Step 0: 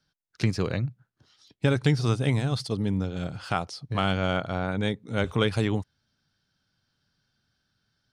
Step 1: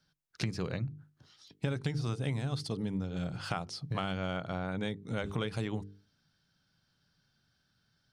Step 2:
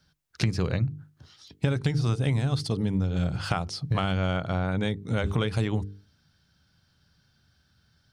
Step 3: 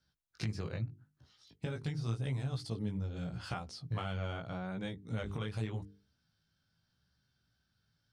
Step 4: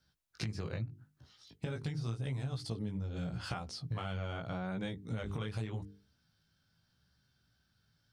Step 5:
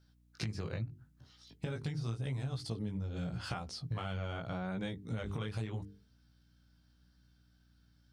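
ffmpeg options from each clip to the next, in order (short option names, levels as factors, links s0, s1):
-af "equalizer=f=160:t=o:w=0.39:g=5,bandreject=f=50:t=h:w=6,bandreject=f=100:t=h:w=6,bandreject=f=150:t=h:w=6,bandreject=f=200:t=h:w=6,bandreject=f=250:t=h:w=6,bandreject=f=300:t=h:w=6,bandreject=f=350:t=h:w=6,bandreject=f=400:t=h:w=6,bandreject=f=450:t=h:w=6,acompressor=threshold=0.0251:ratio=4"
-af "equalizer=f=74:w=1.8:g=11.5,volume=2.11"
-af "flanger=delay=15.5:depth=4.1:speed=0.83,volume=0.355"
-af "acompressor=threshold=0.0126:ratio=4,volume=1.5"
-af "aeval=exprs='val(0)+0.000501*(sin(2*PI*60*n/s)+sin(2*PI*2*60*n/s)/2+sin(2*PI*3*60*n/s)/3+sin(2*PI*4*60*n/s)/4+sin(2*PI*5*60*n/s)/5)':c=same"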